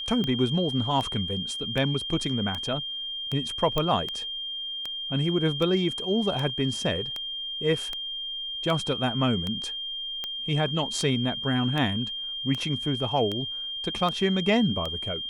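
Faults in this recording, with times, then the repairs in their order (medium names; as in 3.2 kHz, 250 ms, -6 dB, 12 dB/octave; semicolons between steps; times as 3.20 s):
tick 78 rpm -17 dBFS
whine 3.2 kHz -31 dBFS
3.78 s: pop -12 dBFS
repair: de-click; band-stop 3.2 kHz, Q 30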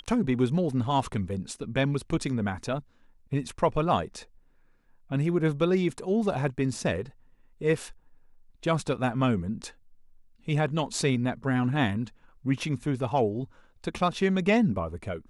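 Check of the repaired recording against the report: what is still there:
nothing left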